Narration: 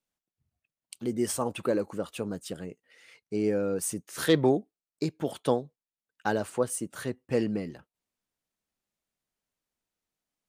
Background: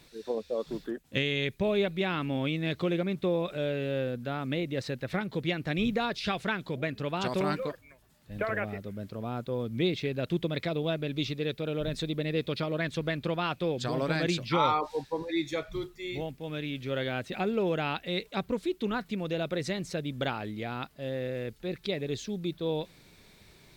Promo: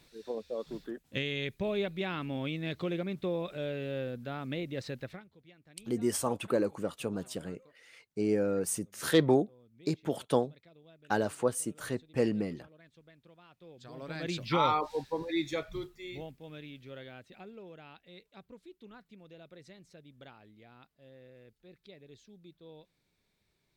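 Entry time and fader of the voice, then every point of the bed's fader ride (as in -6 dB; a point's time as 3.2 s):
4.85 s, -1.5 dB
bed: 5.04 s -5 dB
5.31 s -28 dB
13.48 s -28 dB
14.5 s -1.5 dB
15.54 s -1.5 dB
17.68 s -21 dB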